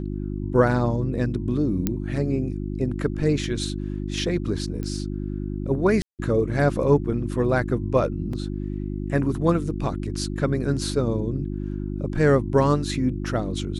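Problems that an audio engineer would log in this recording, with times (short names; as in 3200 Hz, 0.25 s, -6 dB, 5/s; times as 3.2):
hum 50 Hz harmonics 7 -29 dBFS
1.87 pop -9 dBFS
4.83 pop -20 dBFS
6.02–6.19 gap 0.168 s
8.33 gap 3.8 ms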